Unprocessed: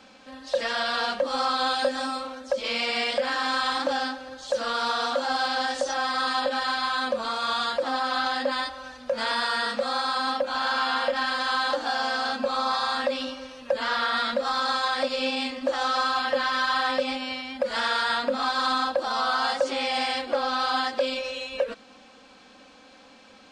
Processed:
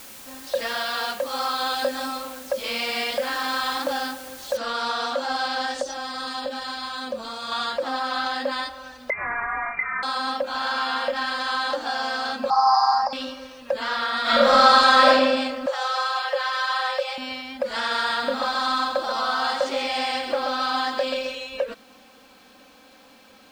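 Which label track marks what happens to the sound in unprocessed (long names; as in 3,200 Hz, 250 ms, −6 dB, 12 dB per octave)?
0.790000	1.720000	low-shelf EQ 350 Hz −6.5 dB
4.570000	4.570000	noise floor change −43 dB −64 dB
5.820000	7.520000	parametric band 1,400 Hz −7 dB 2.6 octaves
9.100000	10.030000	voice inversion scrambler carrier 2,600 Hz
12.500000	13.130000	drawn EQ curve 110 Hz 0 dB, 180 Hz +8 dB, 270 Hz −22 dB, 560 Hz −11 dB, 810 Hz +15 dB, 1,300 Hz +1 dB, 3,500 Hz −29 dB, 5,100 Hz +15 dB, 7,800 Hz −16 dB
14.220000	15.100000	thrown reverb, RT60 1.4 s, DRR −11 dB
15.660000	17.180000	Butterworth high-pass 390 Hz 72 dB per octave
17.780000	21.350000	feedback echo at a low word length 132 ms, feedback 35%, word length 9 bits, level −6 dB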